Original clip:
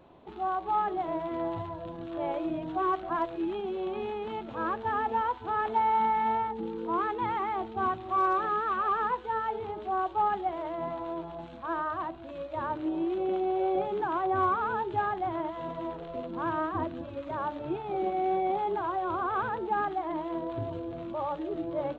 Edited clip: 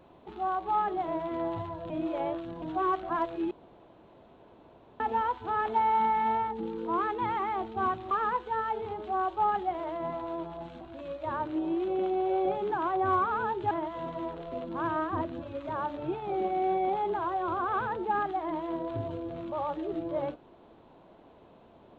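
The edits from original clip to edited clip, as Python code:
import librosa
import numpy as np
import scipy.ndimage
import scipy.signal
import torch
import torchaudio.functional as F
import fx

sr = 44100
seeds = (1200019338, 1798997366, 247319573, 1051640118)

y = fx.edit(x, sr, fx.reverse_span(start_s=1.9, length_s=0.72),
    fx.room_tone_fill(start_s=3.51, length_s=1.49),
    fx.cut(start_s=8.11, length_s=0.78),
    fx.cut(start_s=11.59, length_s=0.52),
    fx.cut(start_s=15.01, length_s=0.32), tone=tone)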